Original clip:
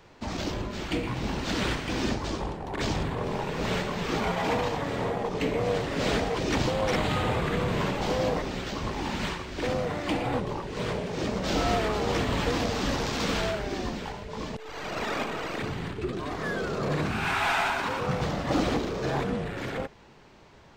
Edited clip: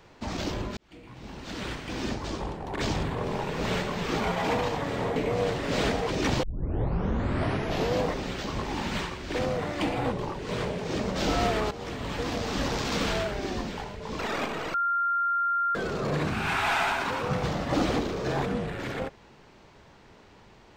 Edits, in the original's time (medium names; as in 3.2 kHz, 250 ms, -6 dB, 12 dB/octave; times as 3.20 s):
0.77–2.69 s: fade in
5.16–5.44 s: delete
6.71 s: tape start 1.57 s
11.99–13.02 s: fade in, from -13 dB
14.47–14.97 s: delete
15.52–16.53 s: bleep 1.39 kHz -23 dBFS